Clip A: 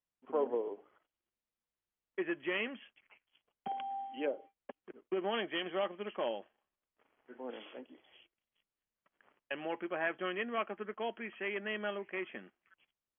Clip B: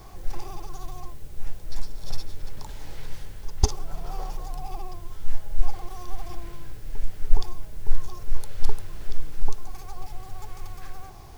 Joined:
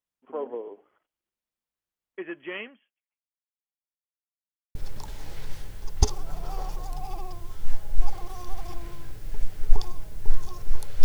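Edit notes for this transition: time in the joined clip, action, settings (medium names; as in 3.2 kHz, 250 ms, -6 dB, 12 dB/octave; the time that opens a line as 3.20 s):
clip A
2.60–4.06 s: fade out exponential
4.06–4.75 s: mute
4.75 s: go over to clip B from 2.36 s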